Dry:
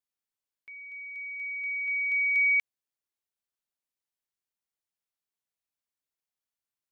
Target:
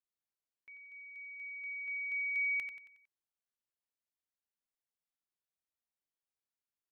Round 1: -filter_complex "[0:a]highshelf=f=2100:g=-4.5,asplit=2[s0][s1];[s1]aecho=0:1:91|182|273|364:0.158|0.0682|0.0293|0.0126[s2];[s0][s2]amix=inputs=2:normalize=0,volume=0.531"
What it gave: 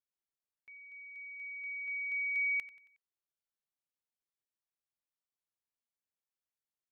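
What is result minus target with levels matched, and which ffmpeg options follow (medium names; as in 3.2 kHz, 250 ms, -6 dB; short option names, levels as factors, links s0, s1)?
echo-to-direct -8 dB
-filter_complex "[0:a]highshelf=f=2100:g=-4.5,asplit=2[s0][s1];[s1]aecho=0:1:91|182|273|364|455:0.398|0.171|0.0736|0.0317|0.0136[s2];[s0][s2]amix=inputs=2:normalize=0,volume=0.531"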